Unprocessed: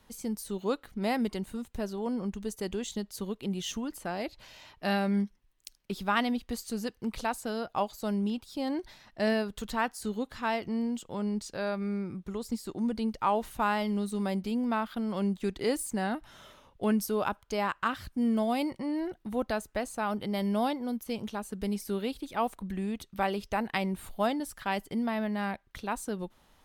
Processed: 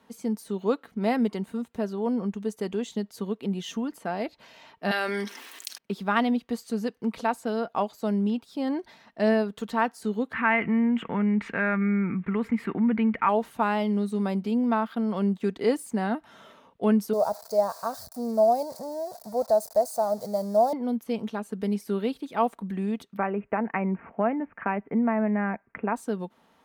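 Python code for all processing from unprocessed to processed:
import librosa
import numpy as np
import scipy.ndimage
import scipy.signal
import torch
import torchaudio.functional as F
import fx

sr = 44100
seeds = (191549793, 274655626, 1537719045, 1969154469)

y = fx.chain(x, sr, fx.steep_highpass(hz=270.0, slope=36),
    fx.tilt_shelf(db=-8.0, hz=1100.0),
    fx.env_flatten(amount_pct=70), at=(4.91, 5.78))
y = fx.chain(y, sr, fx.curve_eq(hz=(200.0, 570.0, 2200.0, 4700.0), db=(0, -8, 11, -26)),
    fx.env_flatten(amount_pct=50), at=(10.33, 13.29))
y = fx.chain(y, sr, fx.crossing_spikes(level_db=-22.5),
    fx.curve_eq(hz=(110.0, 330.0, 620.0, 1300.0, 3000.0, 4500.0, 6700.0), db=(0, -15, 9, -12, -29, -2, -7)), at=(17.13, 20.73))
y = fx.chain(y, sr, fx.steep_lowpass(hz=2500.0, slope=72),
    fx.band_squash(depth_pct=70), at=(23.17, 25.96))
y = scipy.signal.sosfilt(scipy.signal.butter(2, 170.0, 'highpass', fs=sr, output='sos'), y)
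y = fx.high_shelf(y, sr, hz=3100.0, db=-11.5)
y = y + 0.31 * np.pad(y, (int(4.4 * sr / 1000.0), 0))[:len(y)]
y = F.gain(torch.from_numpy(y), 4.5).numpy()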